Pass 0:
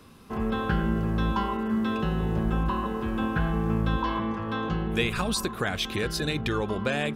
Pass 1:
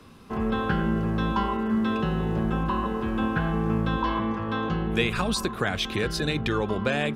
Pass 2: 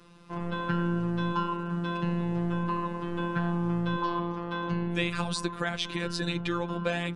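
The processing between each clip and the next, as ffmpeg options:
ffmpeg -i in.wav -filter_complex "[0:a]highshelf=frequency=9400:gain=-9,acrossover=split=120[link_01][link_02];[link_01]alimiter=level_in=7dB:limit=-24dB:level=0:latency=1,volume=-7dB[link_03];[link_03][link_02]amix=inputs=2:normalize=0,volume=2dB" out.wav
ffmpeg -i in.wav -af "afftfilt=real='hypot(re,im)*cos(PI*b)':imag='0':win_size=1024:overlap=0.75,aresample=22050,aresample=44100,volume=-1dB" out.wav

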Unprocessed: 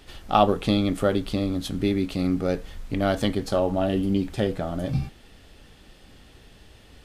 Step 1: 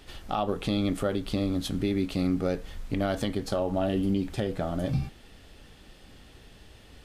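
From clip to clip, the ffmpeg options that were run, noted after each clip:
ffmpeg -i in.wav -af "alimiter=limit=-16.5dB:level=0:latency=1:release=170,volume=-1dB" out.wav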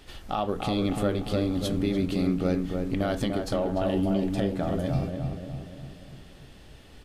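ffmpeg -i in.wav -filter_complex "[0:a]asplit=2[link_01][link_02];[link_02]adelay=294,lowpass=frequency=1500:poles=1,volume=-4dB,asplit=2[link_03][link_04];[link_04]adelay=294,lowpass=frequency=1500:poles=1,volume=0.55,asplit=2[link_05][link_06];[link_06]adelay=294,lowpass=frequency=1500:poles=1,volume=0.55,asplit=2[link_07][link_08];[link_08]adelay=294,lowpass=frequency=1500:poles=1,volume=0.55,asplit=2[link_09][link_10];[link_10]adelay=294,lowpass=frequency=1500:poles=1,volume=0.55,asplit=2[link_11][link_12];[link_12]adelay=294,lowpass=frequency=1500:poles=1,volume=0.55,asplit=2[link_13][link_14];[link_14]adelay=294,lowpass=frequency=1500:poles=1,volume=0.55[link_15];[link_01][link_03][link_05][link_07][link_09][link_11][link_13][link_15]amix=inputs=8:normalize=0" out.wav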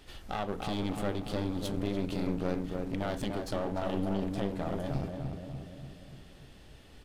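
ffmpeg -i in.wav -af "aeval=exprs='clip(val(0),-1,0.0188)':channel_layout=same,volume=-4dB" out.wav

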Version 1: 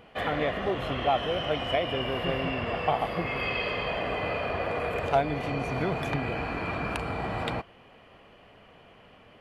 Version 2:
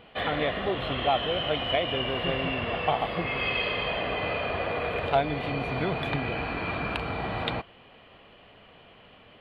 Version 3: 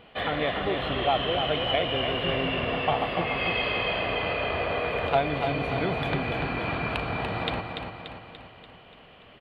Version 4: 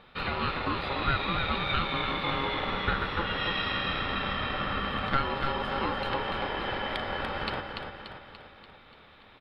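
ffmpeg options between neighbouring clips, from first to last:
ffmpeg -i in.wav -af "highshelf=frequency=4800:width_type=q:width=3:gain=-8" out.wav
ffmpeg -i in.wav -af "aecho=1:1:290|580|870|1160|1450|1740|2030:0.501|0.271|0.146|0.0789|0.0426|0.023|0.0124" out.wav
ffmpeg -i in.wav -af "aeval=exprs='val(0)*sin(2*PI*680*n/s)':channel_layout=same" out.wav

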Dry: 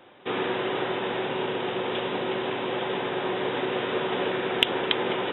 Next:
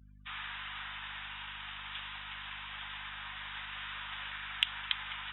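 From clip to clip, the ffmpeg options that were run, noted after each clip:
ffmpeg -i in.wav -af "highpass=frequency=1200:width=0.5412,highpass=frequency=1200:width=1.3066,afftdn=noise_reduction=33:noise_floor=-48,aeval=exprs='val(0)+0.00398*(sin(2*PI*50*n/s)+sin(2*PI*2*50*n/s)/2+sin(2*PI*3*50*n/s)/3+sin(2*PI*4*50*n/s)/4+sin(2*PI*5*50*n/s)/5)':channel_layout=same,volume=-7.5dB" out.wav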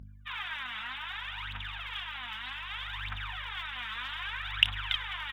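ffmpeg -i in.wav -filter_complex "[0:a]asplit=2[link_01][link_02];[link_02]adelay=29,volume=-6dB[link_03];[link_01][link_03]amix=inputs=2:normalize=0,aphaser=in_gain=1:out_gain=1:delay=4.7:decay=0.74:speed=0.64:type=triangular,asubboost=boost=5:cutoff=93" out.wav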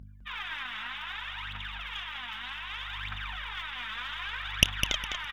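ffmpeg -i in.wav -af "aeval=exprs='0.596*(cos(1*acos(clip(val(0)/0.596,-1,1)))-cos(1*PI/2))+0.168*(cos(4*acos(clip(val(0)/0.596,-1,1)))-cos(4*PI/2))':channel_layout=same,aecho=1:1:205|410|615:0.398|0.107|0.029" out.wav

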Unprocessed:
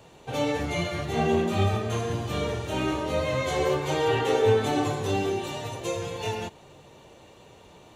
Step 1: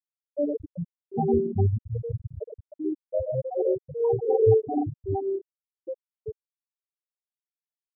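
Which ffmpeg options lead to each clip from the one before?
ffmpeg -i in.wav -af "afftfilt=real='re*gte(hypot(re,im),0.316)':imag='im*gte(hypot(re,im),0.316)':win_size=1024:overlap=0.75,volume=3dB" out.wav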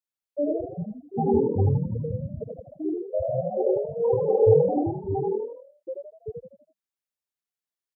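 ffmpeg -i in.wav -filter_complex "[0:a]asplit=6[link_01][link_02][link_03][link_04][link_05][link_06];[link_02]adelay=82,afreqshift=40,volume=-4dB[link_07];[link_03]adelay=164,afreqshift=80,volume=-11.3dB[link_08];[link_04]adelay=246,afreqshift=120,volume=-18.7dB[link_09];[link_05]adelay=328,afreqshift=160,volume=-26dB[link_10];[link_06]adelay=410,afreqshift=200,volume=-33.3dB[link_11];[link_01][link_07][link_08][link_09][link_10][link_11]amix=inputs=6:normalize=0" out.wav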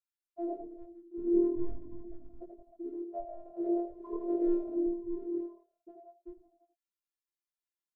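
ffmpeg -i in.wav -af "asuperstop=centerf=740:order=8:qfactor=2.7,afftfilt=real='hypot(re,im)*cos(PI*b)':imag='0':win_size=512:overlap=0.75,flanger=delay=19.5:depth=4.5:speed=0.43,volume=-1.5dB" out.wav

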